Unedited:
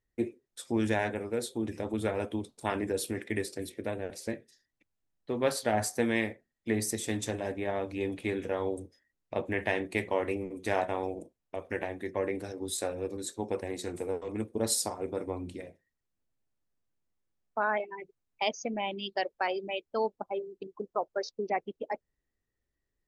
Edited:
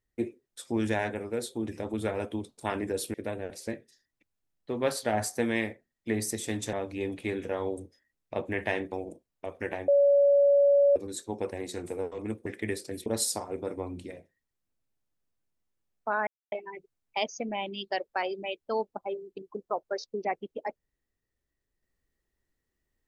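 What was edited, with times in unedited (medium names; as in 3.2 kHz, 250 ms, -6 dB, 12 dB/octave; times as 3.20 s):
3.14–3.74 s: move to 14.56 s
7.33–7.73 s: delete
9.92–11.02 s: delete
11.98–13.06 s: bleep 566 Hz -17.5 dBFS
17.77 s: insert silence 0.25 s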